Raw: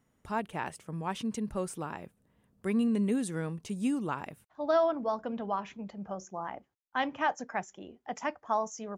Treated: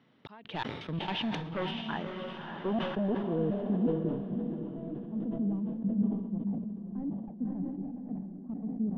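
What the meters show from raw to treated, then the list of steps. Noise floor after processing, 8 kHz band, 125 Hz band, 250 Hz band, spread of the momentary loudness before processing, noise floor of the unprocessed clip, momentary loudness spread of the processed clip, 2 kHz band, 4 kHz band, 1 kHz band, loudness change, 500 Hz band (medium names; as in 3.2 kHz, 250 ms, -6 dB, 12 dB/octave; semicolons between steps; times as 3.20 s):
-47 dBFS, under -20 dB, +5.0 dB, +2.5 dB, 14 LU, -74 dBFS, 9 LU, -4.5 dB, +5.5 dB, -8.0 dB, -0.5 dB, -3.5 dB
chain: single-diode clipper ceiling -21 dBFS; high-pass 120 Hz 24 dB/octave; peaking EQ 290 Hz +2.5 dB; in parallel at 0 dB: compression, threshold -40 dBFS, peak gain reduction 15.5 dB; on the sum: trance gate "xxx..xx..xx." 167 bpm -60 dB; Savitzky-Golay filter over 15 samples; overload inside the chain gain 29.5 dB; low-pass sweep 3.7 kHz -> 210 Hz, 0.93–4.32 s; on a send: echo that smears into a reverb 594 ms, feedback 44%, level -4 dB; on the sum: decay stretcher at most 51 dB/s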